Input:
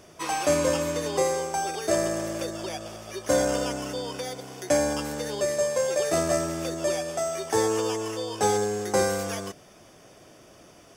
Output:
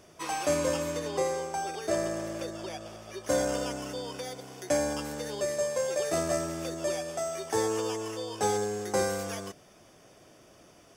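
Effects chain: 0.99–3.24 s: treble shelf 6.3 kHz -5.5 dB; trim -4.5 dB

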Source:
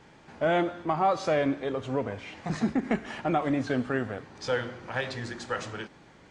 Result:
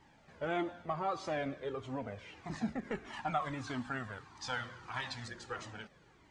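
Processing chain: 3.13–5.28 s: graphic EQ 500/1000/4000/8000 Hz -10/+9/+4/+6 dB; Shepard-style flanger falling 1.6 Hz; trim -4.5 dB

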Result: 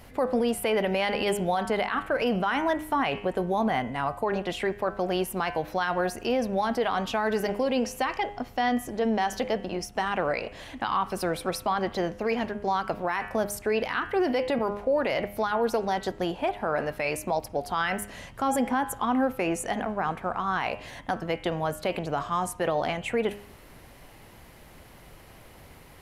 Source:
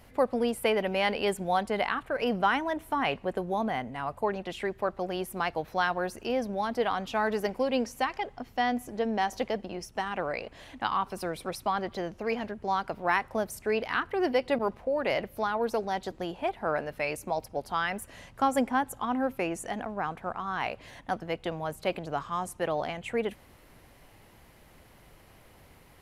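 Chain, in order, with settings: de-hum 102.2 Hz, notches 32; peak limiter -23 dBFS, peak gain reduction 11 dB; trim +6 dB

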